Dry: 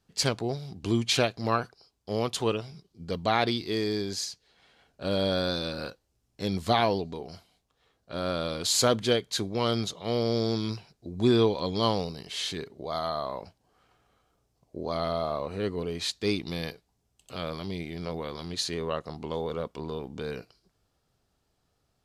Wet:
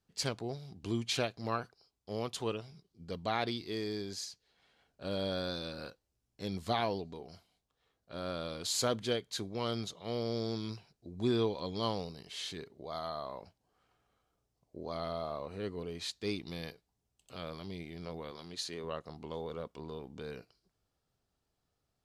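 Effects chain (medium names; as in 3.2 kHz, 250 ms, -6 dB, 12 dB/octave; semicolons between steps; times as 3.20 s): 18.31–18.84 s: high-pass 190 Hz 6 dB/octave; trim -8.5 dB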